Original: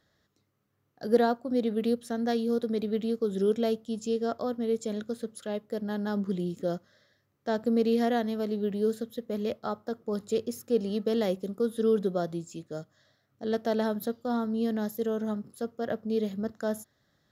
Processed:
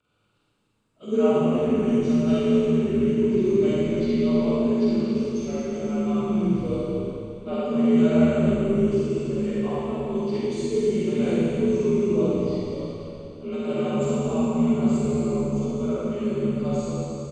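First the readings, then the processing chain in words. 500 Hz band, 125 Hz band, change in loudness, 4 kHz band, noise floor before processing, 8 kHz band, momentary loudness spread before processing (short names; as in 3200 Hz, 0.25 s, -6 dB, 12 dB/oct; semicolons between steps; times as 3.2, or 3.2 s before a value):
+5.5 dB, +12.5 dB, +7.0 dB, +2.5 dB, -74 dBFS, n/a, 9 LU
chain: inharmonic rescaling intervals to 87%; low shelf 140 Hz +5 dB; on a send: frequency-shifting echo 0.229 s, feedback 36%, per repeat -76 Hz, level -9 dB; on the sum: Schroeder reverb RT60 2.5 s, DRR -8 dB; gain -2.5 dB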